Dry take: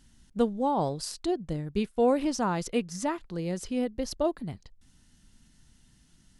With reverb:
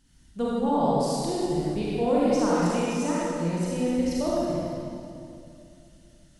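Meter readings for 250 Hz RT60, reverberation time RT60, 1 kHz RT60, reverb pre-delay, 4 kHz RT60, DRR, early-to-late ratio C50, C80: 3.0 s, 2.6 s, 2.4 s, 35 ms, 2.1 s, -7.5 dB, -5.5 dB, -3.0 dB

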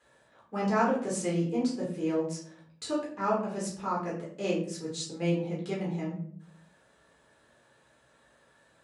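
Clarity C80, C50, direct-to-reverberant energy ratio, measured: 10.0 dB, 5.5 dB, -5.5 dB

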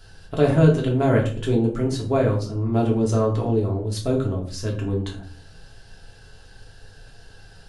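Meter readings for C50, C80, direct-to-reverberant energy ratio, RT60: 9.0 dB, 14.0 dB, -2.5 dB, 0.45 s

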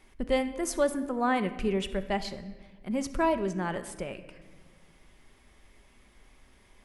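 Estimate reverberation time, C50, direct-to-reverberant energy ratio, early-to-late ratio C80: 1.4 s, 12.5 dB, 9.0 dB, 14.0 dB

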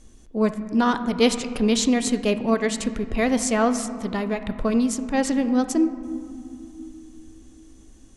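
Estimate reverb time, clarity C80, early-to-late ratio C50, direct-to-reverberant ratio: 2.8 s, 12.5 dB, 11.5 dB, 10.0 dB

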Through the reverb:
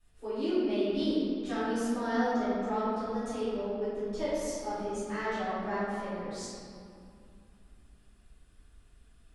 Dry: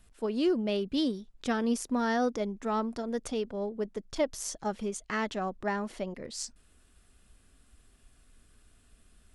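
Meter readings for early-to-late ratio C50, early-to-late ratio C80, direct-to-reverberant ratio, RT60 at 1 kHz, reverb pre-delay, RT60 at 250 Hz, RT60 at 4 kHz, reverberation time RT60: -4.5 dB, -2.0 dB, -15.0 dB, 2.5 s, 5 ms, 3.1 s, 1.4 s, 2.4 s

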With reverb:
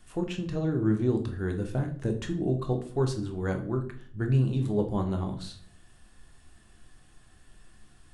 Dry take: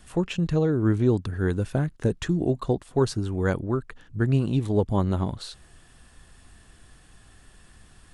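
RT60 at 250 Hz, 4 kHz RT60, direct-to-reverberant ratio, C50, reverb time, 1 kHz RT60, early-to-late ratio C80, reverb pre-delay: 0.75 s, 0.40 s, 4.0 dB, 11.0 dB, 0.55 s, 0.45 s, 15.0 dB, 3 ms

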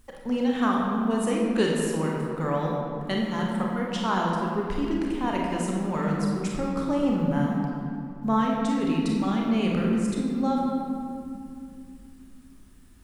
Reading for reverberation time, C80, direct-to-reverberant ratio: 2.4 s, 1.5 dB, -2.0 dB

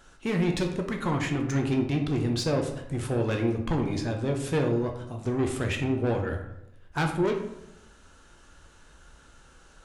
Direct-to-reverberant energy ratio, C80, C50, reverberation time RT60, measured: 2.5 dB, 10.0 dB, 7.0 dB, 0.85 s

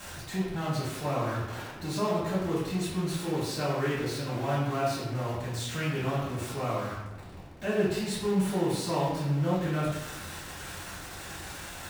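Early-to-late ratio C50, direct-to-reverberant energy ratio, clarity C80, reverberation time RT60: 1.0 dB, -11.0 dB, 3.5 dB, 1.0 s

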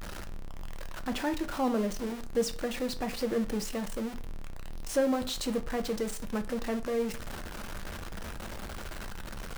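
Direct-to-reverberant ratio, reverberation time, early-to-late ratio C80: 8.5 dB, 0.40 s, 20.5 dB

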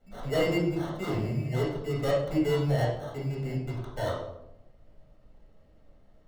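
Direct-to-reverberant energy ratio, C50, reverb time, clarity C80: -7.5 dB, 2.5 dB, 0.90 s, 6.0 dB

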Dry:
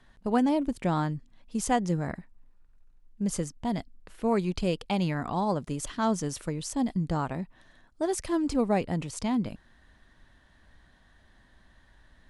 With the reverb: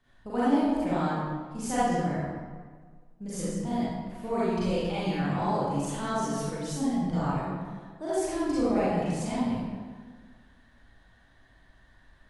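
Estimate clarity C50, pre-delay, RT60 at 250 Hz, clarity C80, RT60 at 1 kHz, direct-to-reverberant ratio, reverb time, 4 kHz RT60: -6.0 dB, 33 ms, 1.6 s, -1.5 dB, 1.6 s, -11.5 dB, 1.6 s, 1.0 s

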